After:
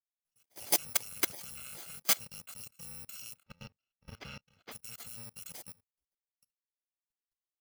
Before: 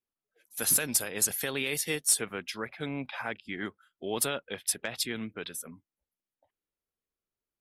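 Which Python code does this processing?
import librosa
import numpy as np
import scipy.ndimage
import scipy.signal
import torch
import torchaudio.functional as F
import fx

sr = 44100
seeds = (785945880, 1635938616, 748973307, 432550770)

y = fx.bit_reversed(x, sr, seeds[0], block=128)
y = fx.air_absorb(y, sr, metres=270.0, at=(3.42, 4.71), fade=0.02)
y = fx.level_steps(y, sr, step_db=23)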